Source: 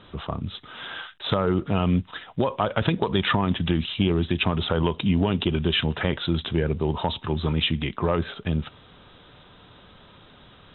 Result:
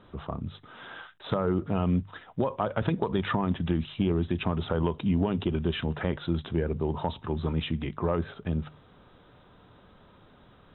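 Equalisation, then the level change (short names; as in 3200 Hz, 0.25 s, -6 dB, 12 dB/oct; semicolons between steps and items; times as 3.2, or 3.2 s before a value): bell 3400 Hz -9.5 dB 1.7 oct; notches 50/100/150 Hz; -3.5 dB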